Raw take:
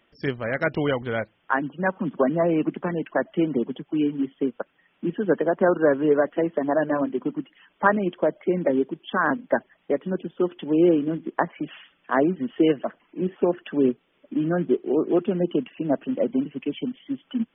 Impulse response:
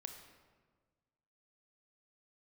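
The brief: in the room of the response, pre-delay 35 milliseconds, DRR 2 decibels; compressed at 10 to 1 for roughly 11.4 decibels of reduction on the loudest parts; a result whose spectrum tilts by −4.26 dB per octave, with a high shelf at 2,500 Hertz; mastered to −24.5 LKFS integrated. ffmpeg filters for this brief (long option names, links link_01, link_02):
-filter_complex "[0:a]highshelf=frequency=2500:gain=-4.5,acompressor=threshold=-26dB:ratio=10,asplit=2[link_01][link_02];[1:a]atrim=start_sample=2205,adelay=35[link_03];[link_02][link_03]afir=irnorm=-1:irlink=0,volume=2dB[link_04];[link_01][link_04]amix=inputs=2:normalize=0,volume=5.5dB"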